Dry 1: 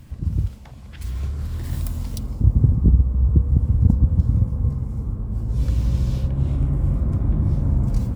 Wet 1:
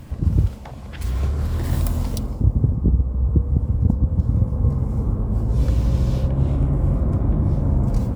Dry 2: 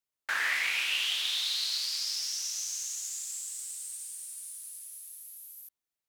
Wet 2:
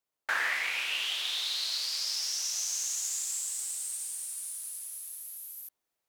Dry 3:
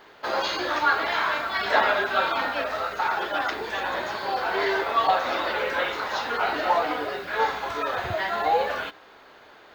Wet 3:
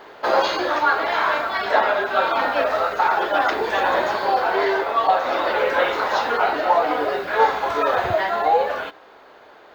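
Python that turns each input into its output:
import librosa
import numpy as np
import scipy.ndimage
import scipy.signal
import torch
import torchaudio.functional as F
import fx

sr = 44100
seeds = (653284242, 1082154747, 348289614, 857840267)

y = fx.peak_eq(x, sr, hz=600.0, db=7.5, octaves=2.4)
y = fx.rider(y, sr, range_db=4, speed_s=0.5)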